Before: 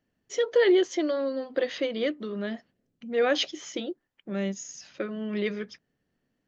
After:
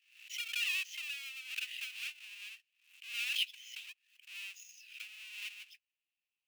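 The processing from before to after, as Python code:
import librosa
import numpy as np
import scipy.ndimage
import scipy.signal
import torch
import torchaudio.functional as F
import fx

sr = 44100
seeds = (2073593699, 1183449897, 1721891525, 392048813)

y = fx.halfwave_hold(x, sr)
y = fx.ladder_highpass(y, sr, hz=2500.0, resonance_pct=80)
y = fx.pre_swell(y, sr, db_per_s=100.0)
y = y * librosa.db_to_amplitude(-5.5)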